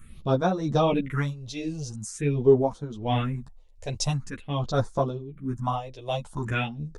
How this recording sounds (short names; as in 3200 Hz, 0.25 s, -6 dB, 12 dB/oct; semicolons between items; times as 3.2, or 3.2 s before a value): phasing stages 4, 0.46 Hz, lowest notch 220–2700 Hz; tremolo triangle 1.3 Hz, depth 80%; a shimmering, thickened sound